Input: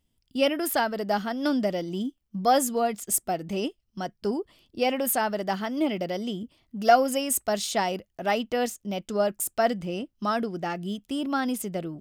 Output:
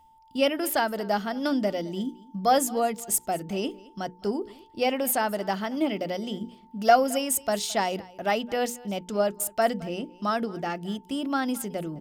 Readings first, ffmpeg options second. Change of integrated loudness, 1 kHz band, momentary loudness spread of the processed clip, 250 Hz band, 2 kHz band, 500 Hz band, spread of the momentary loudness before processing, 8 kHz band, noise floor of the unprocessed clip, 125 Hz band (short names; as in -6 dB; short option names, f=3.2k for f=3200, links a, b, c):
0.0 dB, 0.0 dB, 11 LU, -0.5 dB, 0.0 dB, 0.0 dB, 11 LU, 0.0 dB, -75 dBFS, -1.0 dB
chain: -af "areverse,acompressor=mode=upward:threshold=-31dB:ratio=2.5,areverse,bandreject=f=60:t=h:w=6,bandreject=f=120:t=h:w=6,bandreject=f=180:t=h:w=6,bandreject=f=240:t=h:w=6,bandreject=f=300:t=h:w=6,bandreject=f=360:t=h:w=6,bandreject=f=420:t=h:w=6,bandreject=f=480:t=h:w=6,aeval=exprs='val(0)+0.00178*sin(2*PI*890*n/s)':c=same,aecho=1:1:217:0.0841"